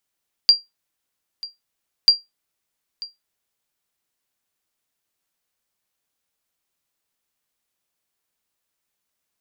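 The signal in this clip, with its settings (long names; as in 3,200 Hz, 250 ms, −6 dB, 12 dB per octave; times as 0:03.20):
ping with an echo 4,750 Hz, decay 0.18 s, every 1.59 s, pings 2, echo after 0.94 s, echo −20 dB −3.5 dBFS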